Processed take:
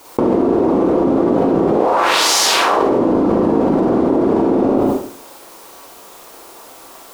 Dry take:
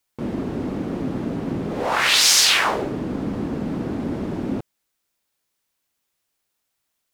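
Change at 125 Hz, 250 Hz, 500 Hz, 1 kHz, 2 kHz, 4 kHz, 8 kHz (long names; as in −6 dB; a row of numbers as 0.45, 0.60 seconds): +4.0, +11.5, +15.0, +10.5, +1.0, 0.0, +0.5 decibels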